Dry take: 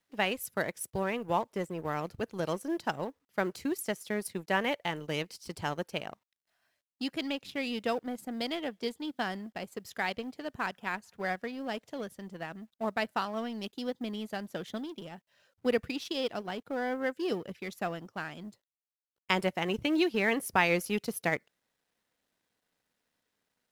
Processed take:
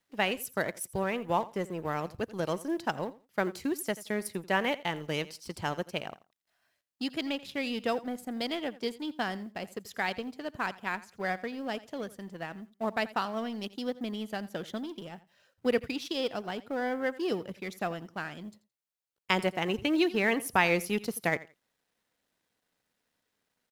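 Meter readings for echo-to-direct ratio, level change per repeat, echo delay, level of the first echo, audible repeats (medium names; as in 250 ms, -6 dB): -18.5 dB, -15.0 dB, 85 ms, -18.5 dB, 2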